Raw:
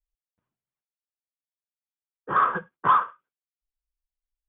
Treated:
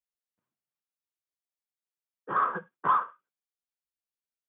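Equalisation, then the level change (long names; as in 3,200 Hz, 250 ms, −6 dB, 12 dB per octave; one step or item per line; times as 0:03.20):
high-pass filter 150 Hz 12 dB per octave
dynamic equaliser 3,000 Hz, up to −6 dB, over −37 dBFS, Q 0.95
−4.0 dB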